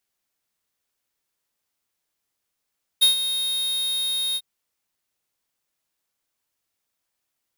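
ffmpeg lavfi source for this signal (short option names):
-f lavfi -i "aevalsrc='0.2*(2*lt(mod(3720*t,1),0.5)-1)':d=1.398:s=44100,afade=t=in:d=0.018,afade=t=out:st=0.018:d=0.122:silence=0.282,afade=t=out:st=1.35:d=0.048"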